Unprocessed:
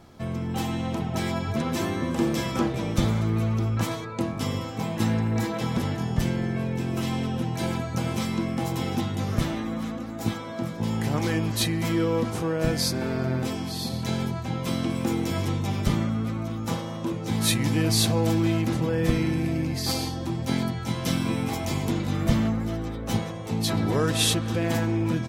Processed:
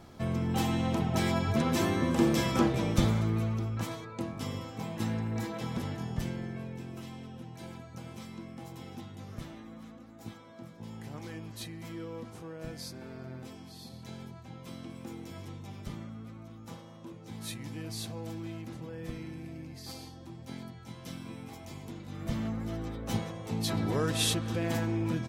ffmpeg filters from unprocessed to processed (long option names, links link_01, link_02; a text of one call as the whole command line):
ffmpeg -i in.wav -af "volume=10dB,afade=type=out:start_time=2.74:duration=0.95:silence=0.421697,afade=type=out:start_time=6.04:duration=1.1:silence=0.375837,afade=type=in:start_time=22.06:duration=0.77:silence=0.281838" out.wav